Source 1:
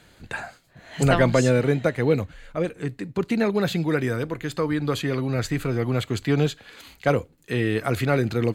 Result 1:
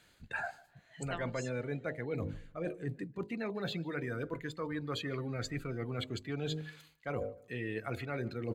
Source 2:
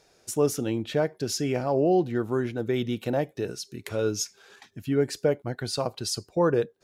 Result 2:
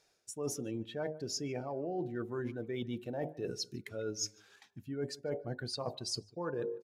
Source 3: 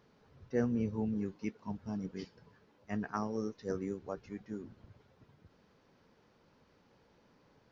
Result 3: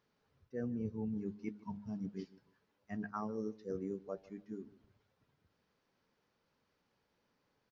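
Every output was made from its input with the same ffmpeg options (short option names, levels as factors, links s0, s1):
-filter_complex "[0:a]bandreject=f=51.72:t=h:w=4,bandreject=f=103.44:t=h:w=4,bandreject=f=155.16:t=h:w=4,bandreject=f=206.88:t=h:w=4,bandreject=f=258.6:t=h:w=4,bandreject=f=310.32:t=h:w=4,bandreject=f=362.04:t=h:w=4,bandreject=f=413.76:t=h:w=4,bandreject=f=465.48:t=h:w=4,bandreject=f=517.2:t=h:w=4,bandreject=f=568.92:t=h:w=4,bandreject=f=620.64:t=h:w=4,bandreject=f=672.36:t=h:w=4,bandreject=f=724.08:t=h:w=4,bandreject=f=775.8:t=h:w=4,bandreject=f=827.52:t=h:w=4,bandreject=f=879.24:t=h:w=4,bandreject=f=930.96:t=h:w=4,bandreject=f=982.68:t=h:w=4,bandreject=f=1034.4:t=h:w=4,afftdn=nr=14:nf=-33,tiltshelf=f=970:g=-3,areverse,acompressor=threshold=0.0126:ratio=8,areverse,asplit=2[s0][s1];[s1]adelay=149,lowpass=f=2000:p=1,volume=0.1,asplit=2[s2][s3];[s3]adelay=149,lowpass=f=2000:p=1,volume=0.26[s4];[s0][s2][s4]amix=inputs=3:normalize=0,volume=1.41"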